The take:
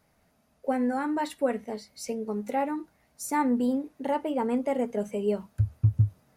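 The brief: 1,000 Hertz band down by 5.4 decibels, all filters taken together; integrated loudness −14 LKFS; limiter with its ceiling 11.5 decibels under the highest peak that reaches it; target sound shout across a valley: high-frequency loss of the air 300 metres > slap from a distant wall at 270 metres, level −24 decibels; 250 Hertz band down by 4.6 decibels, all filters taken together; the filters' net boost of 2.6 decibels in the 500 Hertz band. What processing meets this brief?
parametric band 250 Hz −6 dB
parametric band 500 Hz +7 dB
parametric band 1,000 Hz −7.5 dB
brickwall limiter −23.5 dBFS
high-frequency loss of the air 300 metres
slap from a distant wall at 270 metres, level −24 dB
level +20 dB

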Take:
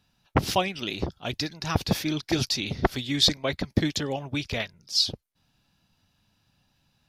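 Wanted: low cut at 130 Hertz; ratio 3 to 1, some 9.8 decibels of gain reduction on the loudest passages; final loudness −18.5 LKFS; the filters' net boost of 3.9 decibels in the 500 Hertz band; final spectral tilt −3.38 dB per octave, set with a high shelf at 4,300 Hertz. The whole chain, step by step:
high-pass filter 130 Hz
parametric band 500 Hz +5 dB
high-shelf EQ 4,300 Hz +6 dB
downward compressor 3 to 1, threshold −28 dBFS
level +12.5 dB

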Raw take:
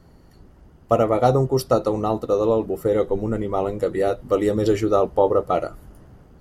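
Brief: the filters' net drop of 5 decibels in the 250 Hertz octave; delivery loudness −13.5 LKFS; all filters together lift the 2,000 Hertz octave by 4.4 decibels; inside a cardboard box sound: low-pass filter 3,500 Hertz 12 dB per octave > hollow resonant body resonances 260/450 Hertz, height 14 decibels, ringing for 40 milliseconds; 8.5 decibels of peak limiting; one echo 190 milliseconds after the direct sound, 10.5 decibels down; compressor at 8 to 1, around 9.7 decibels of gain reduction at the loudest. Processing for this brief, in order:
parametric band 250 Hz −7.5 dB
parametric band 2,000 Hz +6 dB
downward compressor 8 to 1, threshold −23 dBFS
brickwall limiter −21 dBFS
low-pass filter 3,500 Hz 12 dB per octave
single-tap delay 190 ms −10.5 dB
hollow resonant body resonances 260/450 Hz, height 14 dB, ringing for 40 ms
level +9 dB

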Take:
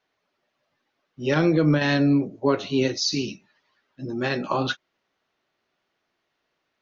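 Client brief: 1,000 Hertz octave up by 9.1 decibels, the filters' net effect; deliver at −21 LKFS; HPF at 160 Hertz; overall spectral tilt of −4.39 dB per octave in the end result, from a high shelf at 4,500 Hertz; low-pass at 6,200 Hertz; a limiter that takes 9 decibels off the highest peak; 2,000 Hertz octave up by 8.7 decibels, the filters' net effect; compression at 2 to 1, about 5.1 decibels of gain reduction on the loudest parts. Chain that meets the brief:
high-pass filter 160 Hz
low-pass filter 6,200 Hz
parametric band 1,000 Hz +9 dB
parametric band 2,000 Hz +7 dB
high-shelf EQ 4,500 Hz +5 dB
downward compressor 2 to 1, threshold −21 dBFS
level +5 dB
brickwall limiter −10.5 dBFS

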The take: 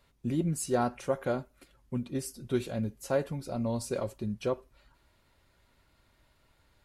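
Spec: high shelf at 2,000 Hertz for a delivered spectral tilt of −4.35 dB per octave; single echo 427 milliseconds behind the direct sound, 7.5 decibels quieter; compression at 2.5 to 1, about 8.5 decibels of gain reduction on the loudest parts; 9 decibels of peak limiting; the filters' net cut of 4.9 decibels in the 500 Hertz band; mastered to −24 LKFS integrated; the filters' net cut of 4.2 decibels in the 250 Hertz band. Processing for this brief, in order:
parametric band 250 Hz −4 dB
parametric band 500 Hz −5.5 dB
high-shelf EQ 2,000 Hz +7.5 dB
downward compressor 2.5 to 1, threshold −39 dBFS
brickwall limiter −34.5 dBFS
single-tap delay 427 ms −7.5 dB
level +20.5 dB

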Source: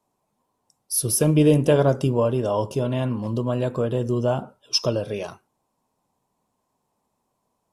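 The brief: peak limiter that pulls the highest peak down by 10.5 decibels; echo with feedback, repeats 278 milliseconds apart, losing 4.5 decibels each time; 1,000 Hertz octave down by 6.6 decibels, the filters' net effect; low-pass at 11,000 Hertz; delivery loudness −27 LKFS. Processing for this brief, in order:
low-pass filter 11,000 Hz
parametric band 1,000 Hz −9 dB
brickwall limiter −17 dBFS
repeating echo 278 ms, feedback 60%, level −4.5 dB
level −1.5 dB

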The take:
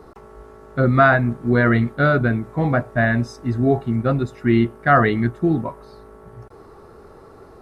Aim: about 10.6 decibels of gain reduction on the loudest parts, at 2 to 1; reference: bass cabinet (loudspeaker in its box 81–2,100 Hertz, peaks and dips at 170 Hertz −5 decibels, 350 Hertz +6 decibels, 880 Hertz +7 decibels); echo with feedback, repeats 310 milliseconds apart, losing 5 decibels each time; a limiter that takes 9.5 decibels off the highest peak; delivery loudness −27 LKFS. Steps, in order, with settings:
downward compressor 2 to 1, threshold −29 dBFS
brickwall limiter −22.5 dBFS
loudspeaker in its box 81–2,100 Hz, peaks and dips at 170 Hz −5 dB, 350 Hz +6 dB, 880 Hz +7 dB
repeating echo 310 ms, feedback 56%, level −5 dB
level +3.5 dB

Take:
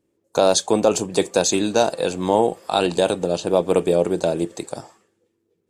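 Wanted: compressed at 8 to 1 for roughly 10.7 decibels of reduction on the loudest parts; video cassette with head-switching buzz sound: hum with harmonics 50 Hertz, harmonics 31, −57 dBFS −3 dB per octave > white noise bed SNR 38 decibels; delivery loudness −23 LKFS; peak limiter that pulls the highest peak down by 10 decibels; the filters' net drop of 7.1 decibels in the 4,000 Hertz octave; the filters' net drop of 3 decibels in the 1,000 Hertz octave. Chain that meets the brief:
parametric band 1,000 Hz −4 dB
parametric band 4,000 Hz −8 dB
downward compressor 8 to 1, threshold −24 dBFS
brickwall limiter −20 dBFS
hum with harmonics 50 Hz, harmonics 31, −57 dBFS −3 dB per octave
white noise bed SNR 38 dB
level +9.5 dB

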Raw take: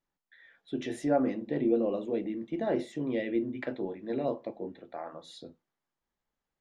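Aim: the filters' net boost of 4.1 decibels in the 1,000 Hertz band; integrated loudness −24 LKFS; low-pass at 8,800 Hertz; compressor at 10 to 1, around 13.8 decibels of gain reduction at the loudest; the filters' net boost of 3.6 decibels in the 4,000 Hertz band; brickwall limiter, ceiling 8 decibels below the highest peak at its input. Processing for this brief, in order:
low-pass filter 8,800 Hz
parametric band 1,000 Hz +6.5 dB
parametric band 4,000 Hz +4 dB
downward compressor 10 to 1, threshold −33 dBFS
level +17.5 dB
brickwall limiter −14 dBFS

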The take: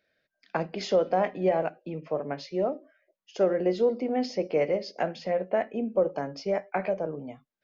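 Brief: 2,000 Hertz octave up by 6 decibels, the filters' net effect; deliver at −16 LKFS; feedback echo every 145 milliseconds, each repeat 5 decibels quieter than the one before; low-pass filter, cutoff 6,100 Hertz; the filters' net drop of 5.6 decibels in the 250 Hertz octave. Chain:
low-pass filter 6,100 Hz
parametric band 250 Hz −8.5 dB
parametric band 2,000 Hz +7.5 dB
repeating echo 145 ms, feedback 56%, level −5 dB
level +12 dB

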